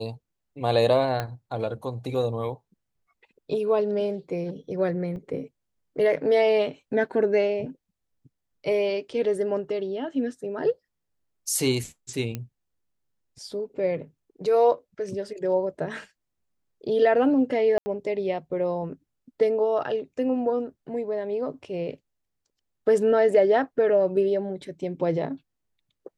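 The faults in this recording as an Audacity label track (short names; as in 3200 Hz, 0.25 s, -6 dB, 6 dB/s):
1.200000	1.200000	pop -14 dBFS
5.160000	5.160000	gap 3.5 ms
12.350000	12.350000	pop -17 dBFS
17.780000	17.860000	gap 80 ms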